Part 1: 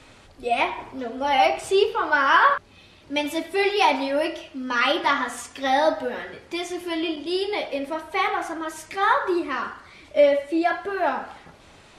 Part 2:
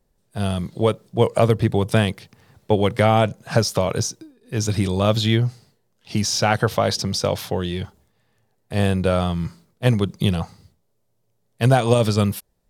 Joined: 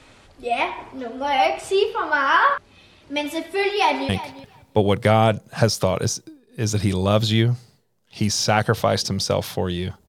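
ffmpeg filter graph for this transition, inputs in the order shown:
-filter_complex "[0:a]apad=whole_dur=10.08,atrim=end=10.08,atrim=end=4.092[a];[1:a]atrim=start=2.028:end=8.02[b];[a][b]acrossfade=d=0.004:c1=hsin:c2=hsin,asplit=2[c][d];[d]afade=t=in:st=3.51:d=0.01,afade=t=out:st=4.09:d=0.01,aecho=0:1:350|700:0.188365|0.0188365[e];[c][e]amix=inputs=2:normalize=0"

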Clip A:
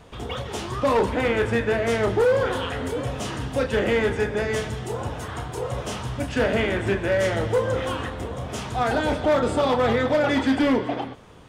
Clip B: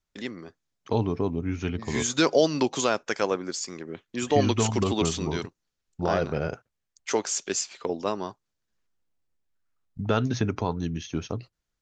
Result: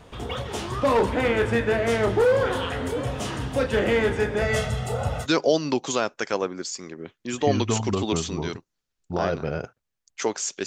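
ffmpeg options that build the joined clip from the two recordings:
-filter_complex "[0:a]asettb=1/sr,asplit=3[a][b][c];[a]atrim=end=4.414[d];[b]atrim=start=4.41:end=5.27,asetpts=PTS-STARTPTS,afade=t=in:d=0.004:c=qsin,afade=t=out:st=0.856:d=0.004:c=qsin,aecho=1:1:1.5:0.9,atrim=end_sample=37926[e];[c]atrim=start=5.266[f];[d][e]acrossfade=d=0.004:c1=hsin:c2=qsin[g];[g][f]acrossfade=d=0.004:c1=qsin:c2=hsin,apad=whole_dur=10.66,atrim=end=10.66,atrim=end=5.27,asetpts=PTS-STARTPTS[h];[1:a]atrim=start=2.1:end=7.55,asetpts=PTS-STARTPTS[i];[h][i]acrossfade=d=0.06:c1=tri:c2=tri"

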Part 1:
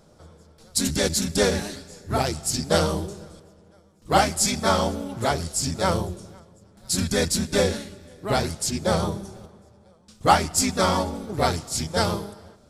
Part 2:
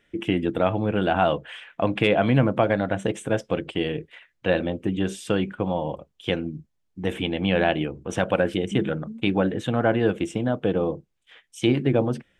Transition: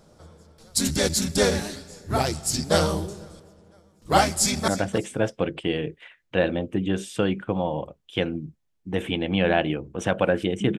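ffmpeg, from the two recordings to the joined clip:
-filter_complex "[0:a]apad=whole_dur=10.78,atrim=end=10.78,atrim=end=4.682[a];[1:a]atrim=start=2.788:end=8.89[b];[a][b]acrossfade=d=0.004:c1=hsin:c2=hsin,asplit=2[c][d];[d]afade=t=in:st=4.26:d=0.01,afade=t=out:st=4.68:d=0.01,aecho=0:1:300|600:0.199526|0.0399052[e];[c][e]amix=inputs=2:normalize=0"

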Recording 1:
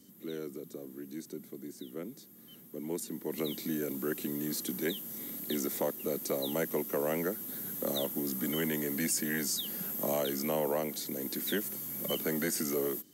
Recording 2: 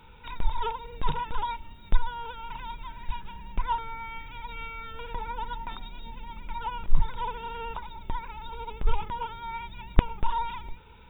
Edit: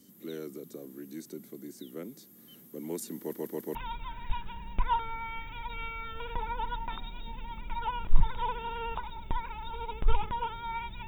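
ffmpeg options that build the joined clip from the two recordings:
-filter_complex "[0:a]apad=whole_dur=11.07,atrim=end=11.07,asplit=4[a][b][c][d];[a]atrim=end=3.332[e];[b]atrim=start=3.188:end=3.332[f];[c]atrim=start=3.188:end=3.332[g];[d]atrim=start=3.188:end=3.332[h];[1:a]atrim=start=2.538:end=9.86[i];[e][f]acrossfade=d=0.004:c1=hsin:c2=hsin[j];[j][g]acrossfade=d=0.004:c1=hsin:c2=hsin[k];[k][h]acrossfade=d=0.004:c1=hsin:c2=hsin[l];[l][i]acrossfade=d=0.004:c1=hsin:c2=hsin"

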